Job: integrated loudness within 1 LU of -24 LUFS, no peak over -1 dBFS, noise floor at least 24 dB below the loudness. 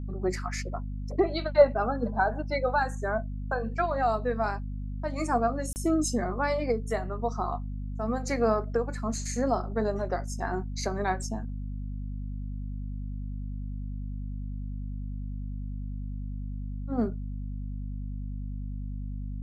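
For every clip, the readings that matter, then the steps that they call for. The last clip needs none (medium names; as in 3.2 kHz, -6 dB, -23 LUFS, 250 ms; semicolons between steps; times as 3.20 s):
dropouts 1; longest dropout 29 ms; hum 50 Hz; highest harmonic 250 Hz; hum level -32 dBFS; loudness -31.0 LUFS; peak level -7.0 dBFS; loudness target -24.0 LUFS
-> interpolate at 5.73 s, 29 ms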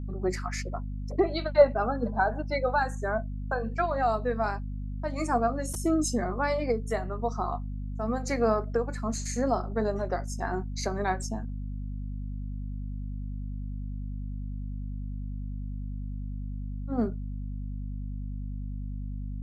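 dropouts 0; hum 50 Hz; highest harmonic 250 Hz; hum level -32 dBFS
-> de-hum 50 Hz, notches 5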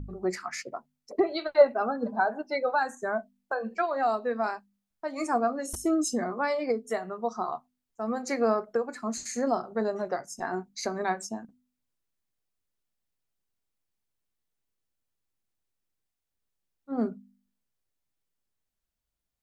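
hum not found; loudness -29.5 LUFS; peak level -7.0 dBFS; loudness target -24.0 LUFS
-> trim +5.5 dB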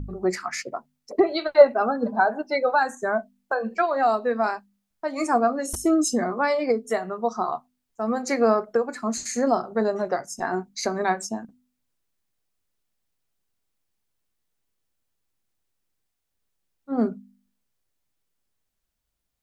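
loudness -24.0 LUFS; peak level -1.5 dBFS; noise floor -79 dBFS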